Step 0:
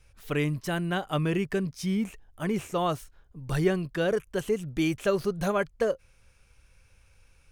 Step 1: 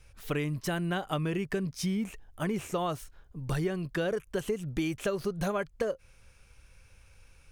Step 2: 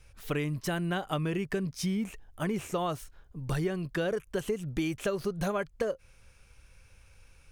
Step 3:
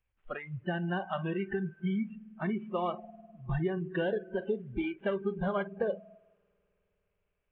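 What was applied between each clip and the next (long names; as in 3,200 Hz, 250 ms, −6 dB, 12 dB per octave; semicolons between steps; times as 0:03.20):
downward compressor 6 to 1, threshold −30 dBFS, peak gain reduction 11.5 dB; level +2.5 dB
no processing that can be heard
variable-slope delta modulation 16 kbit/s; spring reverb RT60 3.7 s, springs 51 ms, chirp 80 ms, DRR 9 dB; noise reduction from a noise print of the clip's start 26 dB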